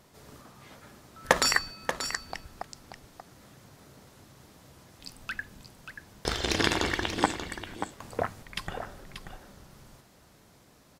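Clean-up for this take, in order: clip repair -5 dBFS; inverse comb 0.584 s -9 dB

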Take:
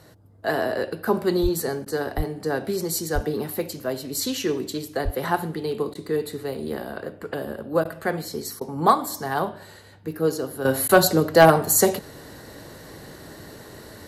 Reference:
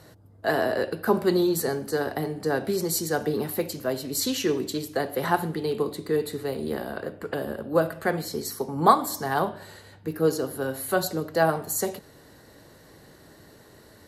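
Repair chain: clip repair -5 dBFS; de-plosive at 1.42/2.16/3.14/5.04; interpolate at 1.85/5.94/7.84/8.6/10.88, 10 ms; gain correction -9.5 dB, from 10.65

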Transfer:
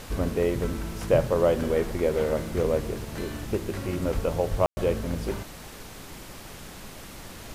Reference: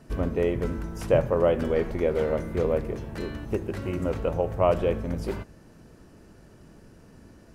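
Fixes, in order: de-plosive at 4.14/4.5; room tone fill 4.66–4.77; noise print and reduce 9 dB

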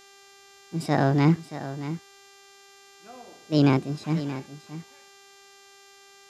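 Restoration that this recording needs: de-hum 395.9 Hz, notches 19; expander -45 dBFS, range -21 dB; inverse comb 0.627 s -12.5 dB

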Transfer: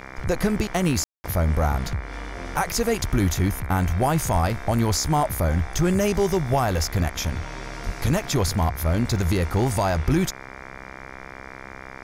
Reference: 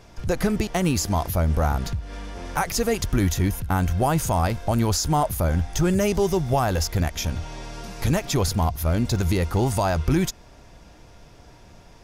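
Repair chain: de-hum 65.8 Hz, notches 36; 4.32–4.44 HPF 140 Hz 24 dB/oct; 7.85–7.97 HPF 140 Hz 24 dB/oct; room tone fill 1.04–1.24

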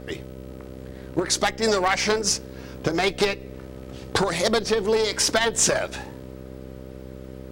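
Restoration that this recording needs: clip repair -10.5 dBFS; de-hum 64.9 Hz, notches 9

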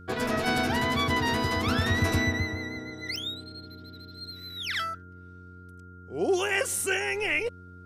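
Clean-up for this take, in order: de-click; de-hum 90.4 Hz, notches 5; notch 1400 Hz, Q 30

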